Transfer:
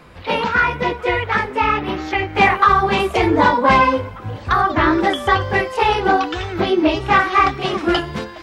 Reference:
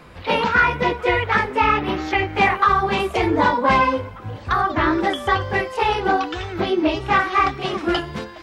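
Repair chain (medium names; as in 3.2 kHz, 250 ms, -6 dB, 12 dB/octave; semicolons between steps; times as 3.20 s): gain correction -3.5 dB, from 2.35 s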